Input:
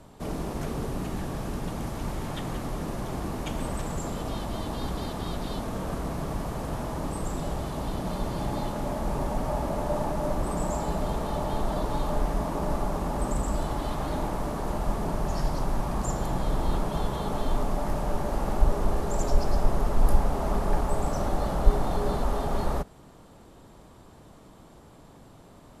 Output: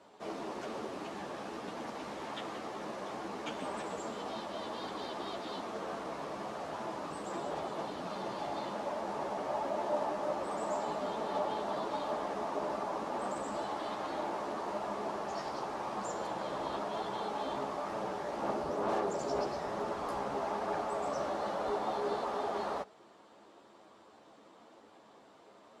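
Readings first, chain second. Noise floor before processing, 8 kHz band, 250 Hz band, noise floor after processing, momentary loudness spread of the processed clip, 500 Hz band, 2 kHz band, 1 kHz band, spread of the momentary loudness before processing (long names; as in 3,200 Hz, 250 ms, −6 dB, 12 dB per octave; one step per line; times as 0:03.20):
−51 dBFS, −10.0 dB, −10.0 dB, −59 dBFS, 6 LU, −4.0 dB, −3.0 dB, −3.0 dB, 6 LU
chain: multi-voice chorus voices 6, 1.1 Hz, delay 12 ms, depth 3 ms
band-pass filter 370–5,400 Hz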